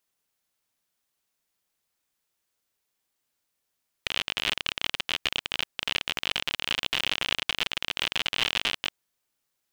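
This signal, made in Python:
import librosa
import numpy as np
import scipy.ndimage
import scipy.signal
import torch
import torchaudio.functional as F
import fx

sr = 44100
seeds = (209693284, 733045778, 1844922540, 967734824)

y = fx.geiger_clicks(sr, seeds[0], length_s=4.84, per_s=56.0, level_db=-10.0)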